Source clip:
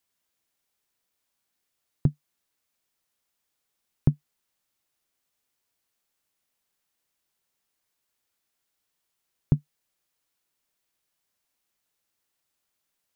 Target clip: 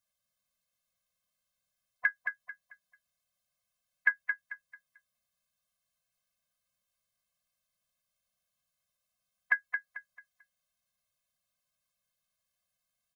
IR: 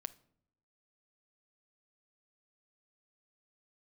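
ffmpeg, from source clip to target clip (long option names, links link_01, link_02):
-filter_complex "[0:a]aeval=exprs='val(0)*sin(2*PI*1800*n/s)':channel_layout=same,asplit=3[link_01][link_02][link_03];[link_02]asetrate=22050,aresample=44100,atempo=2,volume=-13dB[link_04];[link_03]asetrate=35002,aresample=44100,atempo=1.25992,volume=-16dB[link_05];[link_01][link_04][link_05]amix=inputs=3:normalize=0,aecho=1:1:221|442|663|884:0.473|0.142|0.0426|0.0128,afftfilt=real='re*eq(mod(floor(b*sr/1024/250),2),0)':imag='im*eq(mod(floor(b*sr/1024/250),2),0)':win_size=1024:overlap=0.75"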